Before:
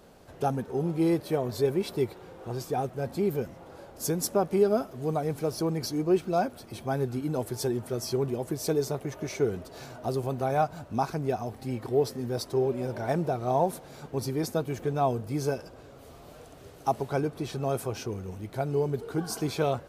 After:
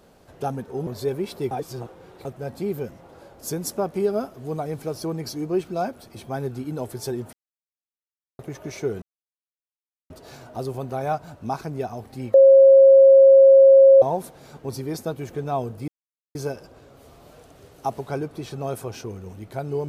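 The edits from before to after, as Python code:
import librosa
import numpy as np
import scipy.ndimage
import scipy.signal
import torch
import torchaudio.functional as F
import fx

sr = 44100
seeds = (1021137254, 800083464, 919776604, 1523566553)

y = fx.edit(x, sr, fx.cut(start_s=0.87, length_s=0.57),
    fx.reverse_span(start_s=2.08, length_s=0.74),
    fx.silence(start_s=7.9, length_s=1.06),
    fx.insert_silence(at_s=9.59, length_s=1.08),
    fx.bleep(start_s=11.83, length_s=1.68, hz=541.0, db=-7.5),
    fx.insert_silence(at_s=15.37, length_s=0.47), tone=tone)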